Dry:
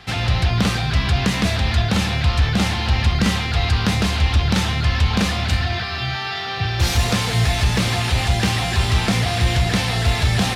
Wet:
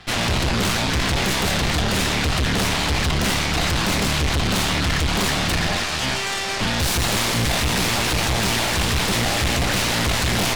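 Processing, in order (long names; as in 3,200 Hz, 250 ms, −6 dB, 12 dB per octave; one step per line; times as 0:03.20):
harmonic generator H 4 −8 dB, 8 −10 dB, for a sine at −7.5 dBFS
soft clipping −15.5 dBFS, distortion −10 dB
level −1.5 dB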